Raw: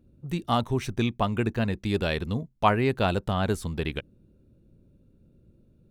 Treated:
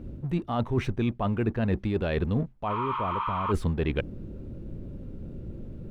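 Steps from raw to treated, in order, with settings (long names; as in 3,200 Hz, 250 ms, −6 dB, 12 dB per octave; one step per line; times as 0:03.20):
mu-law and A-law mismatch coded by mu
healed spectral selection 0:02.72–0:03.49, 860–6,900 Hz before
in parallel at +1.5 dB: brickwall limiter −15 dBFS, peak gain reduction 8 dB
on the sum: bass and treble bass −5 dB, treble −11 dB
reversed playback
downward compressor 10 to 1, threshold −30 dBFS, peak gain reduction 19 dB
reversed playback
spectral tilt −2 dB per octave
level +3 dB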